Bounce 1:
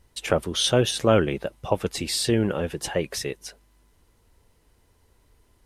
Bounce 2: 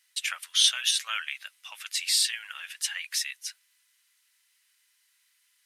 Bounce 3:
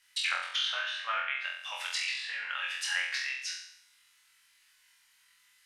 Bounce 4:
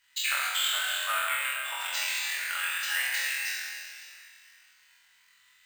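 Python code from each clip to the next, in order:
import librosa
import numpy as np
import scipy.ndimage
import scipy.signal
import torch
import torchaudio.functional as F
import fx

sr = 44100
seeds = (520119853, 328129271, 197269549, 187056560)

y1 = scipy.signal.sosfilt(scipy.signal.cheby2(4, 70, 390.0, 'highpass', fs=sr, output='sos'), x)
y1 = y1 * 10.0 ** (3.0 / 20.0)
y2 = fx.tilt_eq(y1, sr, slope=-2.5)
y2 = fx.env_lowpass_down(y2, sr, base_hz=1400.0, full_db=-30.5)
y2 = fx.room_flutter(y2, sr, wall_m=3.9, rt60_s=0.67)
y2 = y2 * 10.0 ** (5.0 / 20.0)
y3 = fx.rev_plate(y2, sr, seeds[0], rt60_s=2.6, hf_ratio=0.9, predelay_ms=0, drr_db=-2.0)
y3 = np.repeat(scipy.signal.resample_poly(y3, 1, 4), 4)[:len(y3)]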